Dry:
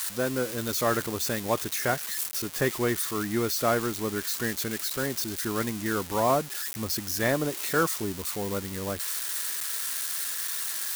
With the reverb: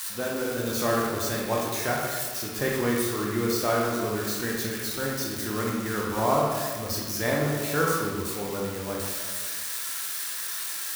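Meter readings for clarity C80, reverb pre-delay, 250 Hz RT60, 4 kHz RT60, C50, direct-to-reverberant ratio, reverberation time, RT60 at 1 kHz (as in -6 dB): 2.5 dB, 17 ms, 1.6 s, 0.90 s, 0.0 dB, -3.0 dB, 1.6 s, 1.6 s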